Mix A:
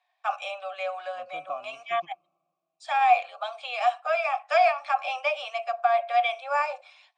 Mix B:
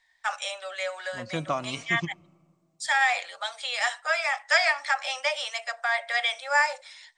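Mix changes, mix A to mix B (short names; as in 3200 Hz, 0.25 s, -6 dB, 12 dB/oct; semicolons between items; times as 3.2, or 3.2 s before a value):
first voice -11.5 dB; master: remove vowel filter a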